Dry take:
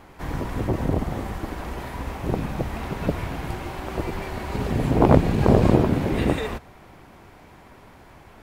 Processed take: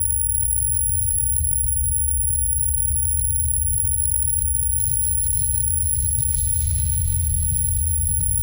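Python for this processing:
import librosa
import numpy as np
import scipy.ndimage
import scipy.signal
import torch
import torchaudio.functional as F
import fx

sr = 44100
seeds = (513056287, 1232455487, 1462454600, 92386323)

p1 = fx.lower_of_two(x, sr, delay_ms=0.89)
p2 = fx.env_lowpass(p1, sr, base_hz=940.0, full_db=-16.5)
p3 = p2 + fx.echo_feedback(p2, sr, ms=670, feedback_pct=57, wet_db=-19.5, dry=0)
p4 = 10.0 ** (-14.5 / 20.0) * np.tanh(p3 / 10.0 ** (-14.5 / 20.0))
p5 = scipy.signal.sosfilt(scipy.signal.cheby2(4, 70, [320.0, 1500.0], 'bandstop', fs=sr, output='sos'), p4)
p6 = fx.high_shelf(p5, sr, hz=7800.0, db=-9.5)
p7 = (np.kron(p6[::4], np.eye(4)[0]) * 4)[:len(p6)]
p8 = scipy.signal.sosfilt(scipy.signal.butter(2, 46.0, 'highpass', fs=sr, output='sos'), p7)
p9 = fx.peak_eq(p8, sr, hz=150.0, db=4.0, octaves=0.39)
p10 = fx.rev_freeverb(p9, sr, rt60_s=4.2, hf_ratio=0.65, predelay_ms=115, drr_db=-0.5)
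p11 = fx.env_flatten(p10, sr, amount_pct=100)
y = p11 * 10.0 ** (-4.5 / 20.0)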